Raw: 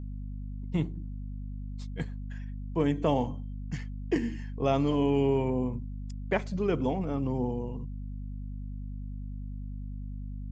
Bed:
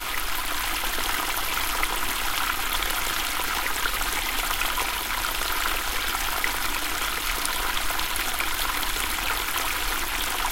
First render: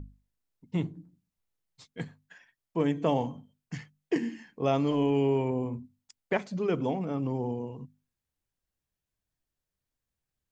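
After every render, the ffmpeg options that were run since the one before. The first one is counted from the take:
ffmpeg -i in.wav -af "bandreject=frequency=50:width_type=h:width=6,bandreject=frequency=100:width_type=h:width=6,bandreject=frequency=150:width_type=h:width=6,bandreject=frequency=200:width_type=h:width=6,bandreject=frequency=250:width_type=h:width=6" out.wav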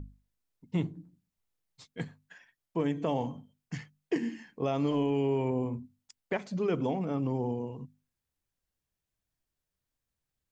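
ffmpeg -i in.wav -af "alimiter=limit=-19.5dB:level=0:latency=1:release=112" out.wav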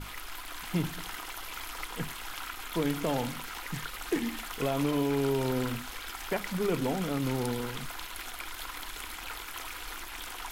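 ffmpeg -i in.wav -i bed.wav -filter_complex "[1:a]volume=-14dB[link_01];[0:a][link_01]amix=inputs=2:normalize=0" out.wav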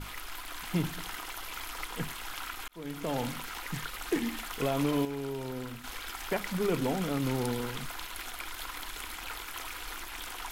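ffmpeg -i in.wav -filter_complex "[0:a]asplit=4[link_01][link_02][link_03][link_04];[link_01]atrim=end=2.68,asetpts=PTS-STARTPTS,afade=type=out:start_time=2.676:duration=0.004:curve=hsin[link_05];[link_02]atrim=start=2.68:end=5.052,asetpts=PTS-STARTPTS,afade=type=in:duration=0.6[link_06];[link_03]atrim=start=5.048:end=5.842,asetpts=PTS-STARTPTS,volume=-8dB[link_07];[link_04]atrim=start=5.838[link_08];[link_05][link_06]concat=n=2:v=0:a=1[link_09];[link_09][link_07]acrossfade=duration=0.004:curve1=hsin:curve2=hsin[link_10];[link_10][link_08]acrossfade=duration=0.004:curve1=hsin:curve2=hsin" out.wav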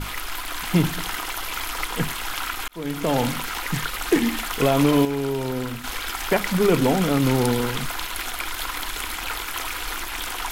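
ffmpeg -i in.wav -af "volume=11dB" out.wav

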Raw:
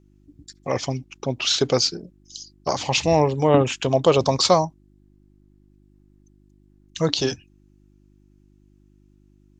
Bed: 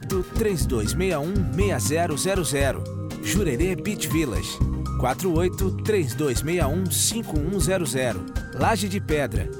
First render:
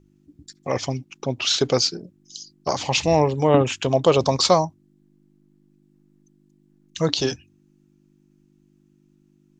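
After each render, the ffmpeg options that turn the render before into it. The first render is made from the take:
ffmpeg -i in.wav -af "bandreject=frequency=50:width_type=h:width=4,bandreject=frequency=100:width_type=h:width=4" out.wav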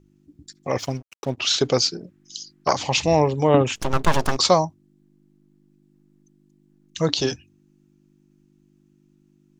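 ffmpeg -i in.wav -filter_complex "[0:a]asplit=3[link_01][link_02][link_03];[link_01]afade=type=out:start_time=0.78:duration=0.02[link_04];[link_02]aeval=exprs='sgn(val(0))*max(abs(val(0))-0.00891,0)':channel_layout=same,afade=type=in:start_time=0.78:duration=0.02,afade=type=out:start_time=1.36:duration=0.02[link_05];[link_03]afade=type=in:start_time=1.36:duration=0.02[link_06];[link_04][link_05][link_06]amix=inputs=3:normalize=0,asettb=1/sr,asplit=3[link_07][link_08][link_09];[link_07]atrim=end=2.014[link_10];[link_08]atrim=start=2.01:end=2.73,asetpts=PTS-STARTPTS,afade=type=in:duration=0.004:curve=qsin,afade=type=out:start_time=0.716:duration=0.004:curve=qsin,equalizer=frequency=1700:width=0.85:gain=12[link_11];[link_09]atrim=start=2.726[link_12];[link_10][link_11]acrossfade=duration=0.004:curve1=hsin:curve2=qsin[link_13];[link_13][link_12]acrossfade=duration=0.004:curve1=qsin:curve2=hsin,asplit=3[link_14][link_15][link_16];[link_14]afade=type=out:start_time=3.75:duration=0.02[link_17];[link_15]aeval=exprs='abs(val(0))':channel_layout=same,afade=type=in:start_time=3.75:duration=0.02,afade=type=out:start_time=4.36:duration=0.02[link_18];[link_16]afade=type=in:start_time=4.36:duration=0.02[link_19];[link_17][link_18][link_19]amix=inputs=3:normalize=0" out.wav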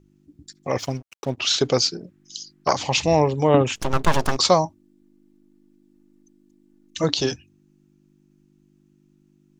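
ffmpeg -i in.wav -filter_complex "[0:a]asettb=1/sr,asplit=3[link_01][link_02][link_03];[link_01]atrim=end=4.654[link_04];[link_02]atrim=start=4.65:end=7.04,asetpts=PTS-STARTPTS,afade=type=in:duration=0.004:curve=qsin,afade=type=out:start_time=2.386:duration=0.004:curve=qsin,aecho=1:1:3.4:0.65,atrim=end_sample=105399[link_05];[link_03]atrim=start=7.036[link_06];[link_04][link_05]acrossfade=duration=0.004:curve1=hsin:curve2=qsin[link_07];[link_07][link_06]acrossfade=duration=0.004:curve1=qsin:curve2=hsin" out.wav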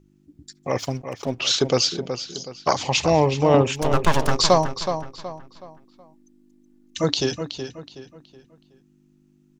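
ffmpeg -i in.wav -filter_complex "[0:a]asplit=2[link_01][link_02];[link_02]adelay=372,lowpass=frequency=4700:poles=1,volume=-8.5dB,asplit=2[link_03][link_04];[link_04]adelay=372,lowpass=frequency=4700:poles=1,volume=0.37,asplit=2[link_05][link_06];[link_06]adelay=372,lowpass=frequency=4700:poles=1,volume=0.37,asplit=2[link_07][link_08];[link_08]adelay=372,lowpass=frequency=4700:poles=1,volume=0.37[link_09];[link_01][link_03][link_05][link_07][link_09]amix=inputs=5:normalize=0" out.wav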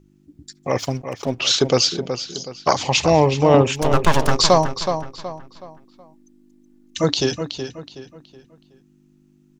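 ffmpeg -i in.wav -af "volume=3dB,alimiter=limit=-1dB:level=0:latency=1" out.wav

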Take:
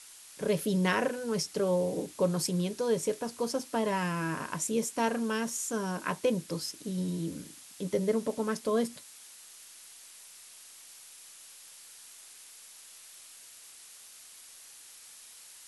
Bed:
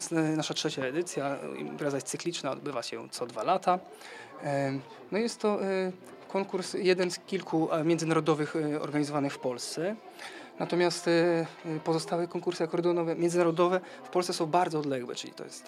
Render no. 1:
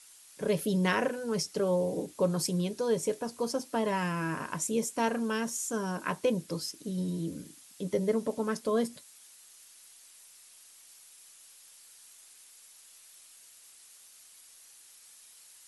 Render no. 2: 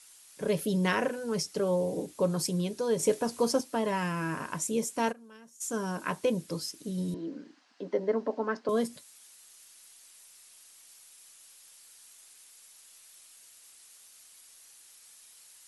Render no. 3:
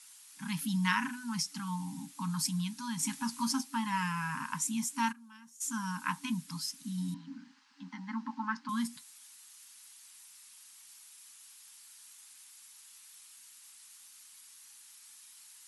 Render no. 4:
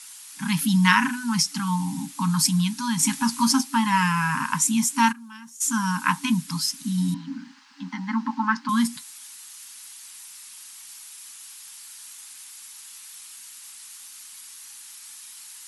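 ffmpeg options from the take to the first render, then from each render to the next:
ffmpeg -i in.wav -af "afftdn=noise_reduction=6:noise_floor=-52" out.wav
ffmpeg -i in.wav -filter_complex "[0:a]asettb=1/sr,asplit=3[link_01][link_02][link_03];[link_01]atrim=end=2.994[link_04];[link_02]atrim=start=2.99:end=3.61,asetpts=PTS-STARTPTS,afade=type=in:duration=0.004:curve=qsin,afade=type=out:start_time=0.616:duration=0.004:curve=qsin,acontrast=26[link_05];[link_03]atrim=start=3.606[link_06];[link_04][link_05]acrossfade=duration=0.004:curve1=hsin:curve2=qsin[link_07];[link_07][link_06]acrossfade=duration=0.004:curve1=qsin:curve2=hsin,asplit=3[link_08][link_09][link_10];[link_08]afade=type=out:start_time=5.11:duration=0.02[link_11];[link_09]agate=range=-21dB:threshold=-28dB:ratio=16:release=100:detection=peak,afade=type=in:start_time=5.11:duration=0.02,afade=type=out:start_time=5.6:duration=0.02[link_12];[link_10]afade=type=in:start_time=5.6:duration=0.02[link_13];[link_11][link_12][link_13]amix=inputs=3:normalize=0,asettb=1/sr,asplit=3[link_14][link_15][link_16];[link_14]atrim=end=7.144[link_17];[link_15]atrim=start=7.14:end=8.69,asetpts=PTS-STARTPTS,afade=type=in:duration=0.004:curve=qsin,afade=type=out:start_time=1.546:duration=0.004:curve=qsin,highpass=frequency=250:width=0.5412,highpass=frequency=250:width=1.3066,equalizer=frequency=250:width_type=q:width=4:gain=4,equalizer=frequency=730:width_type=q:width=4:gain=5,equalizer=frequency=1000:width_type=q:width=4:gain=4,equalizer=frequency=1600:width_type=q:width=4:gain=5,equalizer=frequency=2400:width_type=q:width=4:gain=-4,equalizer=frequency=3500:width_type=q:width=4:gain=-9,lowpass=frequency=4300:width=0.5412,lowpass=frequency=4300:width=1.3066[link_18];[link_16]atrim=start=8.686[link_19];[link_17][link_18]acrossfade=duration=0.004:curve1=hsin:curve2=qsin[link_20];[link_20][link_19]acrossfade=duration=0.004:curve1=qsin:curve2=hsin" out.wav
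ffmpeg -i in.wav -af "highpass=180,afftfilt=real='re*(1-between(b*sr/4096,290,790))':imag='im*(1-between(b*sr/4096,290,790))':win_size=4096:overlap=0.75" out.wav
ffmpeg -i in.wav -af "volume=12dB" out.wav

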